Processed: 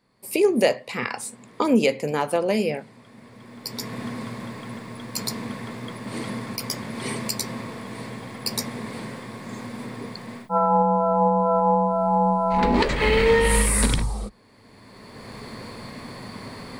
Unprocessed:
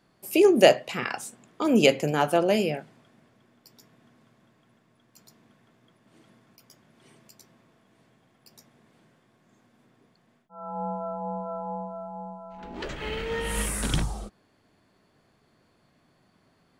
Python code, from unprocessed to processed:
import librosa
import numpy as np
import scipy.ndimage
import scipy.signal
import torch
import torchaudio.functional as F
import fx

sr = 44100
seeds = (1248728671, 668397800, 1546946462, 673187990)

y = fx.recorder_agc(x, sr, target_db=-8.0, rise_db_per_s=19.0, max_gain_db=30)
y = fx.ripple_eq(y, sr, per_octave=0.94, db=7)
y = y * librosa.db_to_amplitude(-3.5)